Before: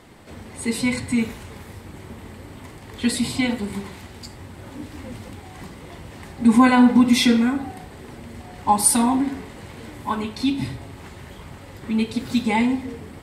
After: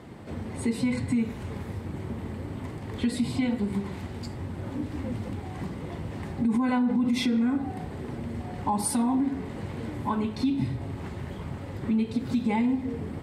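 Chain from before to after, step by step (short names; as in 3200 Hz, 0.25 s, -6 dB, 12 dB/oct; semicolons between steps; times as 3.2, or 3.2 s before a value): HPF 95 Hz 12 dB/oct; tilt -2.5 dB/oct; limiter -11 dBFS, peak gain reduction 10.5 dB; compressor 2:1, threshold -28 dBFS, peak gain reduction 8 dB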